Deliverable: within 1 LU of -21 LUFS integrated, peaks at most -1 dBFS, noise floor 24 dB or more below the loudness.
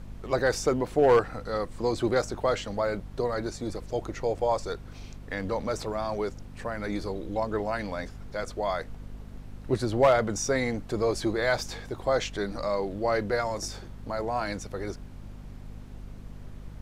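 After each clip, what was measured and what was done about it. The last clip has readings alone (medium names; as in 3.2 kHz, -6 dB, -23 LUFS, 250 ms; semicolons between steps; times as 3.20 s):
hum 50 Hz; highest harmonic 250 Hz; hum level -42 dBFS; noise floor -44 dBFS; noise floor target -53 dBFS; loudness -29.0 LUFS; peak level -12.0 dBFS; loudness target -21.0 LUFS
-> de-hum 50 Hz, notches 5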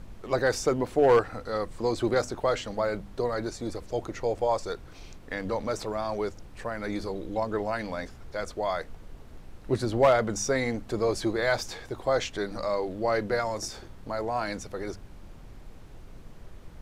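hum not found; noise floor -47 dBFS; noise floor target -53 dBFS
-> noise print and reduce 6 dB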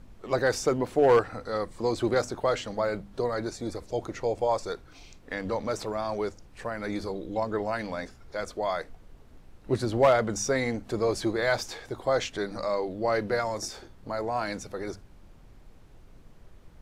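noise floor -52 dBFS; noise floor target -53 dBFS
-> noise print and reduce 6 dB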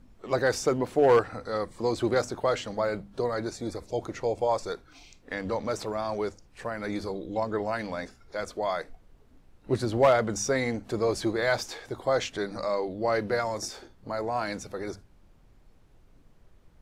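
noise floor -58 dBFS; loudness -29.0 LUFS; peak level -12.0 dBFS; loudness target -21.0 LUFS
-> trim +8 dB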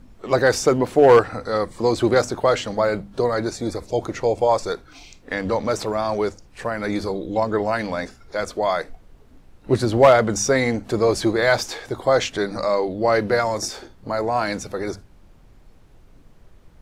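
loudness -21.0 LUFS; peak level -4.0 dBFS; noise floor -50 dBFS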